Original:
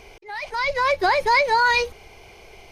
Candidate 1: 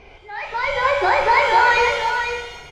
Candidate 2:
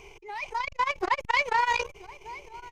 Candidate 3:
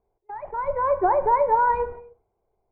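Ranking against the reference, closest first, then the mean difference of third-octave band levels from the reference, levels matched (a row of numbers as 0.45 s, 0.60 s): 2, 1, 3; 4.5 dB, 7.0 dB, 10.5 dB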